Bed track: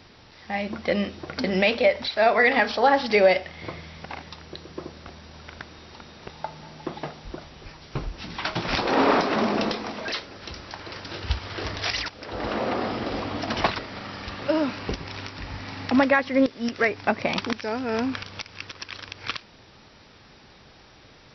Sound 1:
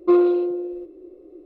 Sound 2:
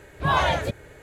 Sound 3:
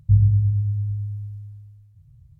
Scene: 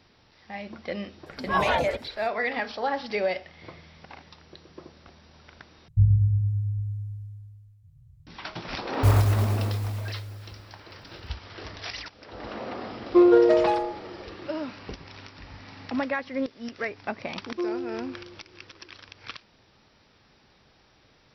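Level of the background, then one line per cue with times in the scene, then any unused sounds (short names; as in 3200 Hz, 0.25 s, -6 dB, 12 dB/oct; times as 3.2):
bed track -9 dB
1.26 add 2 + photocell phaser 5 Hz
5.88 replace with 3 -3.5 dB
8.94 add 3 -4 dB + clock jitter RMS 0.13 ms
13.07 add 1 -1 dB + echoes that change speed 0.189 s, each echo +5 st, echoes 3
17.5 add 1 -14 dB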